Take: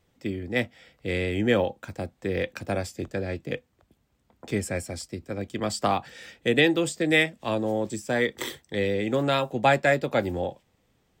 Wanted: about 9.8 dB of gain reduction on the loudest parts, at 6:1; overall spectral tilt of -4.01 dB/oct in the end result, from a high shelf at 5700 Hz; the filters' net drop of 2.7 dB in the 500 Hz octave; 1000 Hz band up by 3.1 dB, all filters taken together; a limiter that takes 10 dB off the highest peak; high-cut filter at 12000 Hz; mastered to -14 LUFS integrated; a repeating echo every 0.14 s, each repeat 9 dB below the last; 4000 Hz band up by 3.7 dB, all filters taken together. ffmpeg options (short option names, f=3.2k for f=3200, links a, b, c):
-af "lowpass=12k,equalizer=f=500:t=o:g=-5,equalizer=f=1k:t=o:g=6.5,equalizer=f=4k:t=o:g=7,highshelf=f=5.7k:g=-8.5,acompressor=threshold=-24dB:ratio=6,alimiter=limit=-21.5dB:level=0:latency=1,aecho=1:1:140|280|420|560:0.355|0.124|0.0435|0.0152,volume=19dB"